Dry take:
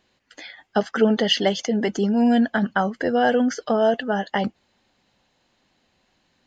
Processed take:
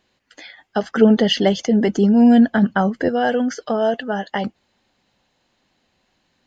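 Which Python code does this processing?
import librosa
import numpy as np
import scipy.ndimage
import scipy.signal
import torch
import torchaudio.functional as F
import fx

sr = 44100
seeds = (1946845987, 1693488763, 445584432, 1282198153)

y = fx.low_shelf(x, sr, hz=450.0, db=8.5, at=(0.83, 3.09))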